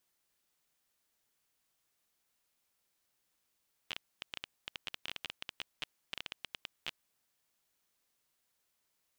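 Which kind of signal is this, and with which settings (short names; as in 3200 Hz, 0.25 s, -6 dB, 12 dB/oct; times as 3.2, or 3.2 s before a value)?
random clicks 13/s -21.5 dBFS 3.16 s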